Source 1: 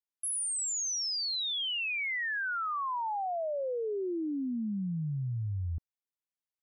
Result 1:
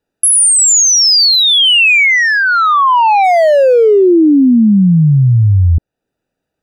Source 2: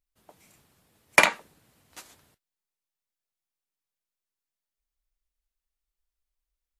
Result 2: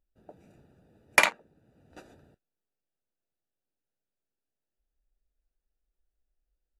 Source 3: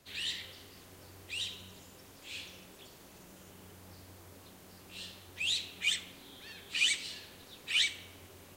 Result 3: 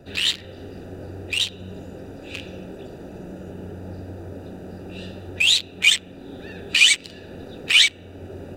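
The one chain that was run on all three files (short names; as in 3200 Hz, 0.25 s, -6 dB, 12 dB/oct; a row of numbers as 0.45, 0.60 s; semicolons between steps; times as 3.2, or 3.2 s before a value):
Wiener smoothing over 41 samples; low shelf 310 Hz -6.5 dB; compressor 1.5:1, threshold -56 dBFS; normalise peaks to -2 dBFS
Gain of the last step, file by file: +37.5, +12.5, +25.5 dB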